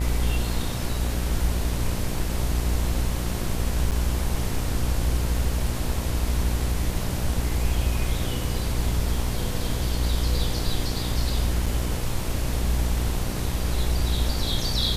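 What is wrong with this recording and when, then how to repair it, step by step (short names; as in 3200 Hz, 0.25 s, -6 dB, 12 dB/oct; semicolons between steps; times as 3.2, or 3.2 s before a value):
buzz 60 Hz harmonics 18 -28 dBFS
3.91–3.92 gap 7.5 ms
11.66 gap 4.3 ms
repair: de-hum 60 Hz, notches 18; interpolate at 3.91, 7.5 ms; interpolate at 11.66, 4.3 ms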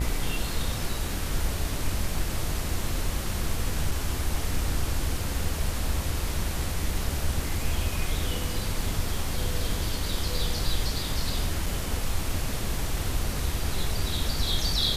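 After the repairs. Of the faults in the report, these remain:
none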